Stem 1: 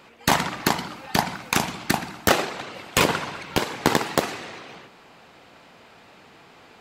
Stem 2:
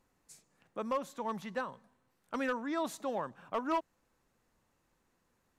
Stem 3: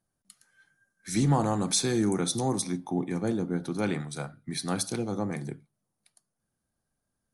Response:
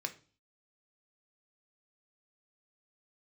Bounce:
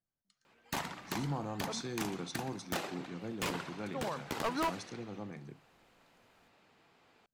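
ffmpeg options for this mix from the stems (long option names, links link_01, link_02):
-filter_complex "[0:a]adelay=450,volume=-16.5dB[link_01];[1:a]acontrast=47,adelay=900,volume=-3dB,asplit=3[link_02][link_03][link_04];[link_02]atrim=end=1.81,asetpts=PTS-STARTPTS,afade=type=out:start_time=1.806:duration=0.004:curve=hsin[link_05];[link_03]atrim=start=1.81:end=3.86,asetpts=PTS-STARTPTS,volume=0[link_06];[link_04]atrim=start=3.86,asetpts=PTS-STARTPTS,afade=type=in:duration=0.004:curve=hsin[link_07];[link_05][link_06][link_07]concat=n=3:v=0:a=1[link_08];[2:a]lowpass=frequency=6500:width=0.5412,lowpass=frequency=6500:width=1.3066,volume=-13dB,asplit=2[link_09][link_10];[link_10]apad=whole_len=285875[link_11];[link_08][link_11]sidechaincompress=threshold=-44dB:ratio=8:attack=25:release=719[link_12];[link_01][link_12][link_09]amix=inputs=3:normalize=0,aeval=exprs='0.0473*(abs(mod(val(0)/0.0473+3,4)-2)-1)':channel_layout=same"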